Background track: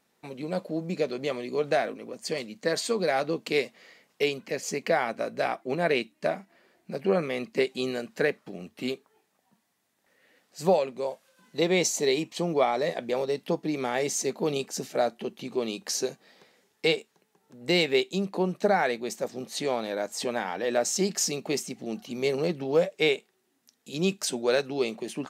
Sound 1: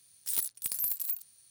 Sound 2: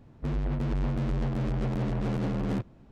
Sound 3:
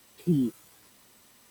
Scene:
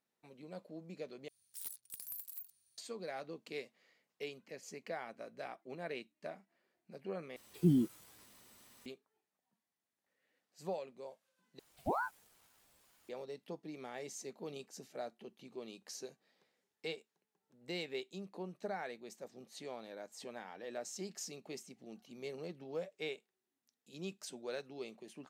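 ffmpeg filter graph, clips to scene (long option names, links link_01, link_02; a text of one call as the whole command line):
ffmpeg -i bed.wav -i cue0.wav -i cue1.wav -i cue2.wav -filter_complex "[3:a]asplit=2[link_01][link_02];[0:a]volume=-18dB[link_03];[link_02]aeval=exprs='val(0)*sin(2*PI*760*n/s+760*0.65/2.2*sin(2*PI*2.2*n/s))':channel_layout=same[link_04];[link_03]asplit=4[link_05][link_06][link_07][link_08];[link_05]atrim=end=1.284[link_09];[1:a]atrim=end=1.5,asetpts=PTS-STARTPTS,volume=-14.5dB[link_10];[link_06]atrim=start=2.776:end=7.364[link_11];[link_01]atrim=end=1.5,asetpts=PTS-STARTPTS,volume=-4dB[link_12];[link_07]atrim=start=8.856:end=11.594[link_13];[link_04]atrim=end=1.5,asetpts=PTS-STARTPTS,volume=-8.5dB[link_14];[link_08]atrim=start=13.086[link_15];[link_09][link_10]acrossfade=duration=0.004:curve1=hsin:curve2=hsin[link_16];[link_16][link_11]acrossfade=duration=0.004:curve1=hsin:curve2=hsin[link_17];[link_17][link_12]acrossfade=duration=0.004:curve1=hsin:curve2=hsin[link_18];[link_18][link_13]acrossfade=duration=0.004:curve1=hsin:curve2=hsin[link_19];[link_19][link_14]acrossfade=duration=0.004:curve1=hsin:curve2=hsin[link_20];[link_20][link_15]acrossfade=duration=0.004:curve1=hsin:curve2=hsin" out.wav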